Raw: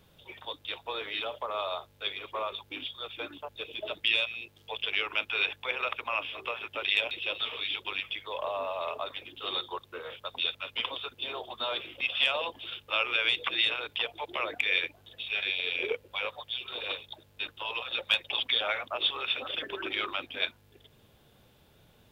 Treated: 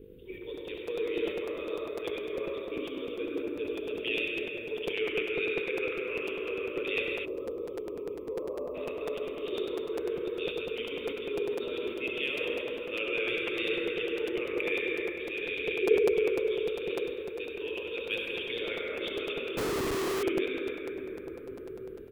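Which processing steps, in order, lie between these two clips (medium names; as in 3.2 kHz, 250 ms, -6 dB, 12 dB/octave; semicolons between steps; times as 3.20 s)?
mains buzz 50 Hz, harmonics 10, -55 dBFS -2 dB/octave; reverberation RT60 5.0 s, pre-delay 58 ms, DRR -4 dB; 7.25–8.75 s: time-frequency box 1.3–12 kHz -28 dB; FFT filter 200 Hz 0 dB, 430 Hz +12 dB, 730 Hz -27 dB, 2.6 kHz -8 dB, 5.7 kHz -30 dB, 10 kHz -13 dB, 14 kHz -7 dB; speakerphone echo 220 ms, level -27 dB; dynamic bell 470 Hz, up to -4 dB, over -40 dBFS, Q 0.91; hum notches 50/100/150/200/250/300/350/400 Hz; 19.57–20.23 s: Schmitt trigger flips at -39.5 dBFS; crackling interface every 0.10 s, samples 256, repeat, from 0.57 s; decay stretcher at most 110 dB/s; trim +2.5 dB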